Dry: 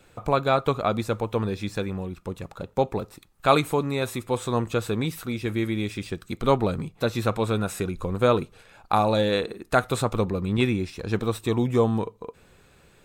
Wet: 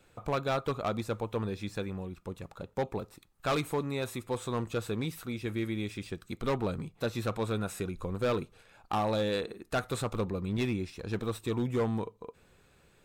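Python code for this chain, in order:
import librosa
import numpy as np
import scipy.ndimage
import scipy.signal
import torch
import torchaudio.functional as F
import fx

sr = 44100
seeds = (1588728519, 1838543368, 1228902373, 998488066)

y = np.clip(10.0 ** (17.0 / 20.0) * x, -1.0, 1.0) / 10.0 ** (17.0 / 20.0)
y = y * librosa.db_to_amplitude(-7.0)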